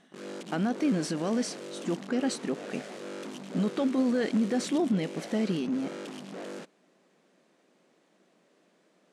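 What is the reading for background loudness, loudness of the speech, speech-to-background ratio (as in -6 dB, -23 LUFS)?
-41.5 LUFS, -30.0 LUFS, 11.5 dB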